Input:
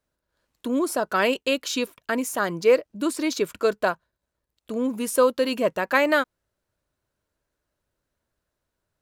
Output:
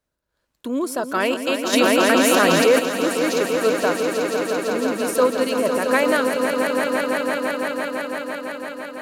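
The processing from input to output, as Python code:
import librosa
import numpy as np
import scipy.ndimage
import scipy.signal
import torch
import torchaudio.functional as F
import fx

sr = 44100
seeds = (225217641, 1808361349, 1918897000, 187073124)

y = fx.echo_swell(x, sr, ms=168, loudest=5, wet_db=-7.5)
y = fx.env_flatten(y, sr, amount_pct=70, at=(1.72, 2.78), fade=0.02)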